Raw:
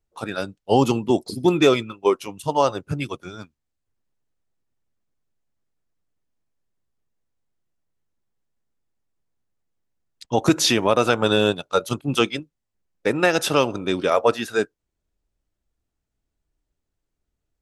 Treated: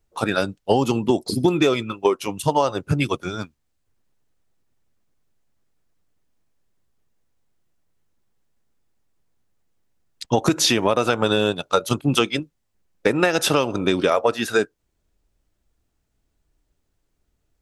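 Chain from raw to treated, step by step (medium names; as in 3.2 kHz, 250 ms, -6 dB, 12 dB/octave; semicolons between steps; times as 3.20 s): compression, threshold -23 dBFS, peak gain reduction 12 dB; trim +8 dB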